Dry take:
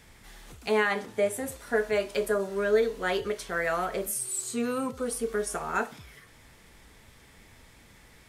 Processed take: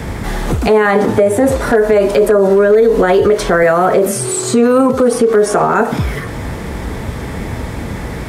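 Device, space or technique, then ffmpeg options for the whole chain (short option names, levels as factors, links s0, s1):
mastering chain: -filter_complex "[0:a]highpass=46,equalizer=f=2800:t=o:w=0.77:g=-2,acrossover=split=280|7400[s0][s1][s2];[s0]acompressor=threshold=0.00447:ratio=4[s3];[s1]acompressor=threshold=0.0316:ratio=4[s4];[s2]acompressor=threshold=0.00355:ratio=4[s5];[s3][s4][s5]amix=inputs=3:normalize=0,acompressor=threshold=0.00891:ratio=1.5,tiltshelf=f=1500:g=8,asoftclip=type=hard:threshold=0.075,alimiter=level_in=31.6:limit=0.891:release=50:level=0:latency=1,asettb=1/sr,asplit=3[s6][s7][s8];[s6]atrim=end=3.634[s9];[s7]atrim=start=3.63:end=5.81,asetpts=PTS-STARTPTS,afade=t=in:d=0.004:c=qsin,afade=t=out:st=2.176:d=0.004:c=qsin,highpass=110[s10];[s8]atrim=start=5.806[s11];[s9][s10]acrossfade=d=0.004:c1=hsin:c2=qsin[s12];[s12][s11]acrossfade=d=0.004:c1=qsin:c2=hsin,volume=0.794"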